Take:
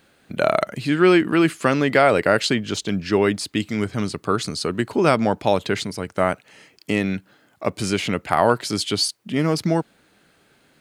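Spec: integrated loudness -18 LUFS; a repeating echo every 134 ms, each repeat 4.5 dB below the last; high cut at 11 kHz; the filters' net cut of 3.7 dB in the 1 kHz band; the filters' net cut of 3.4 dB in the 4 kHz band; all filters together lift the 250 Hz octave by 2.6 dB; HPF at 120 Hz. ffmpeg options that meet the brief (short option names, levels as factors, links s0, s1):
-af "highpass=120,lowpass=11000,equalizer=f=250:t=o:g=4.5,equalizer=f=1000:t=o:g=-5.5,equalizer=f=4000:t=o:g=-4,aecho=1:1:134|268|402|536|670|804|938|1072|1206:0.596|0.357|0.214|0.129|0.0772|0.0463|0.0278|0.0167|0.01,volume=1.12"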